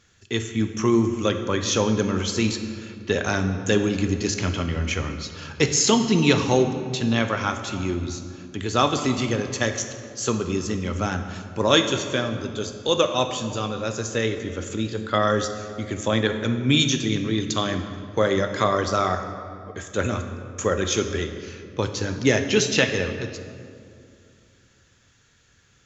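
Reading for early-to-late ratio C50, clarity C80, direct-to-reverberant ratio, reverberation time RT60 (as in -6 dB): 8.0 dB, 9.5 dB, 7.5 dB, 2.4 s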